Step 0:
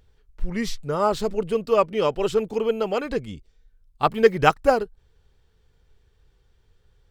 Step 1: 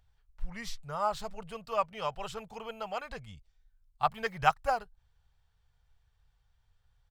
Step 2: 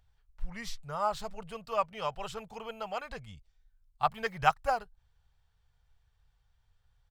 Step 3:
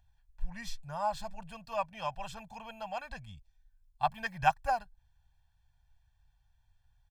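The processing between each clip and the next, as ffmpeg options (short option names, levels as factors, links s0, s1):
-af "firequalizer=gain_entry='entry(120,0);entry(320,-21);entry(700,3);entry(2000,0)':delay=0.05:min_phase=1,volume=0.355"
-af anull
-af "aecho=1:1:1.2:0.85,volume=0.596"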